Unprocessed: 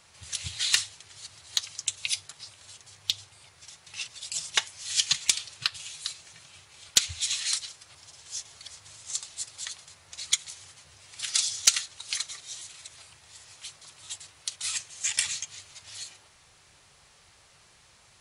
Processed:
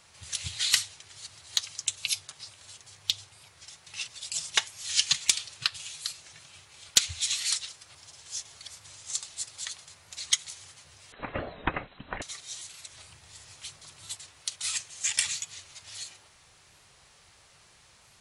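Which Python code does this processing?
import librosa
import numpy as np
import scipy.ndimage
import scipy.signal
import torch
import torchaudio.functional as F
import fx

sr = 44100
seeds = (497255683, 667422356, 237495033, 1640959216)

y = fx.freq_invert(x, sr, carrier_hz=4000, at=(11.12, 12.22))
y = fx.low_shelf(y, sr, hz=270.0, db=7.0, at=(12.95, 14.15))
y = fx.record_warp(y, sr, rpm=45.0, depth_cents=100.0)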